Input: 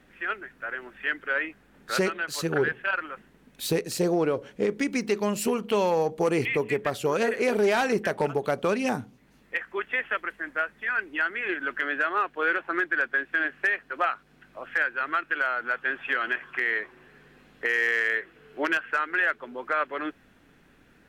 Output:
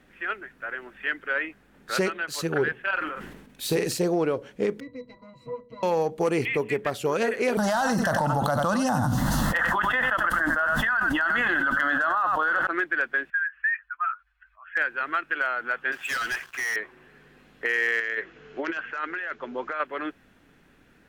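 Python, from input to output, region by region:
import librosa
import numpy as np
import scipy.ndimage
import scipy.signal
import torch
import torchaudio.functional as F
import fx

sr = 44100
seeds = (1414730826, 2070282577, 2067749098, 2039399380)

y = fx.chain(x, sr, fx.doubler(ms=45.0, db=-9),
    fx.sustainer(db_per_s=50.0), at=(2.92, 3.97))
y = fx.chain(y, sr, fx.lower_of_two(delay_ms=6.3),
    fx.octave_resonator(note='B', decay_s=0.14), at=(4.8, 5.83))
y = fx.chain(y, sr, fx.fixed_phaser(hz=980.0, stages=4),
    fx.echo_single(ms=93, db=-13.5),
    fx.env_flatten(amount_pct=100), at=(7.57, 12.67))
y = fx.chain(y, sr, fx.spec_expand(power=1.8),
    fx.cheby2_bandstop(low_hz=120.0, high_hz=510.0, order=4, stop_db=50), at=(13.3, 14.77))
y = fx.chain(y, sr, fx.pre_emphasis(coefficient=0.9),
    fx.leveller(passes=5),
    fx.band_widen(depth_pct=70), at=(15.92, 16.76))
y = fx.chain(y, sr, fx.over_compress(threshold_db=-30.0, ratio=-1.0),
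    fx.resample_bad(factor=3, down='none', up='filtered'), at=(18.0, 19.8))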